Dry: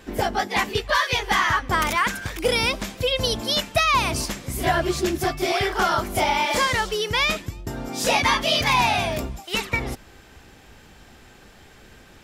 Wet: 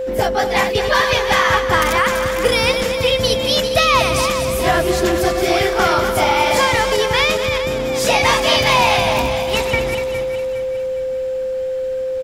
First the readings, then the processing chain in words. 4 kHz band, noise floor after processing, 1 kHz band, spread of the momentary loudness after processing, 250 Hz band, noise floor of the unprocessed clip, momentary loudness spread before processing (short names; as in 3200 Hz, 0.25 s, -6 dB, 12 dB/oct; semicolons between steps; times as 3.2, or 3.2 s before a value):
+5.5 dB, -22 dBFS, +5.5 dB, 9 LU, +5.5 dB, -49 dBFS, 8 LU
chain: regenerating reverse delay 0.205 s, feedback 63%, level -7.5 dB; whine 520 Hz -24 dBFS; echo 0.242 s -11 dB; gain +4 dB